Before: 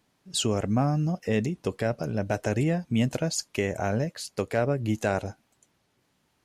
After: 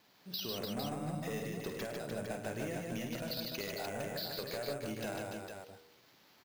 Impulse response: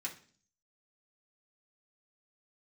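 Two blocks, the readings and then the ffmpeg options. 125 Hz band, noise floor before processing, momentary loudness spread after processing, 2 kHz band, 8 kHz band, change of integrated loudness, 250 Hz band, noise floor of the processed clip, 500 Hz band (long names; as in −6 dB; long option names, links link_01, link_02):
−16.5 dB, −72 dBFS, 5 LU, −9.0 dB, −13.0 dB, −12.0 dB, −13.5 dB, −65 dBFS, −11.0 dB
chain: -filter_complex "[0:a]aemphasis=mode=production:type=bsi,bandreject=frequency=79.85:width_type=h:width=4,bandreject=frequency=159.7:width_type=h:width=4,bandreject=frequency=239.55:width_type=h:width=4,bandreject=frequency=319.4:width_type=h:width=4,bandreject=frequency=399.25:width_type=h:width=4,bandreject=frequency=479.1:width_type=h:width=4,aresample=11025,aresample=44100,acompressor=threshold=-42dB:ratio=6,acrusher=samples=5:mix=1:aa=0.000001,asoftclip=type=tanh:threshold=-37dB,asplit=2[link_01][link_02];[link_02]aecho=0:1:50|103|150|296|455:0.447|0.282|0.708|0.501|0.501[link_03];[link_01][link_03]amix=inputs=2:normalize=0,volume=4dB"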